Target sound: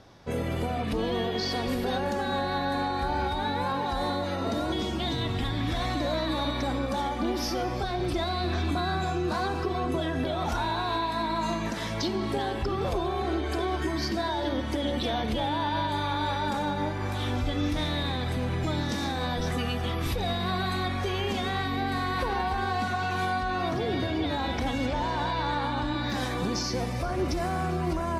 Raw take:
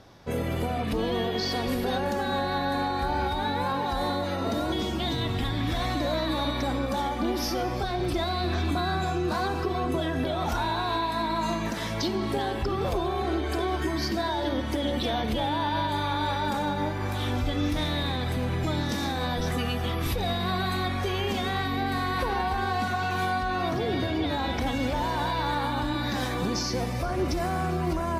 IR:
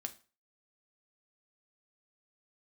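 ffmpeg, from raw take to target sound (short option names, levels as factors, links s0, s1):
-af "asetnsamples=n=441:p=0,asendcmd='24.86 lowpass f 6700;26.1 lowpass f 12000',lowpass=11000,volume=0.891"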